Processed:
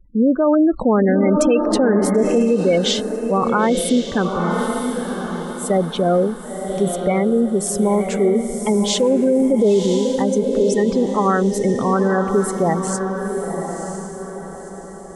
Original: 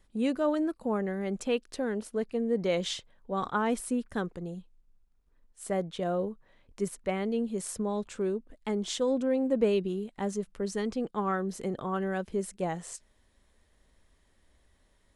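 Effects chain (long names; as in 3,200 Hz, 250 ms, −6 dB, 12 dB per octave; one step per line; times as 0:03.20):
gate on every frequency bin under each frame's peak −20 dB strong
feedback delay with all-pass diffusion 996 ms, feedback 41%, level −6.5 dB
boost into a limiter +21.5 dB
0:00.47–0:02.43: envelope flattener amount 50%
level −7 dB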